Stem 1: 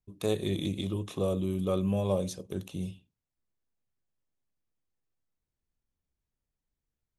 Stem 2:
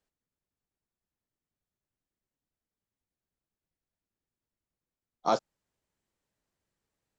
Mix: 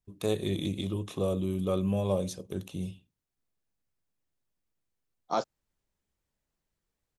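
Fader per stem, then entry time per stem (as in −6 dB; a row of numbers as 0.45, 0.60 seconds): 0.0, −3.0 decibels; 0.00, 0.05 seconds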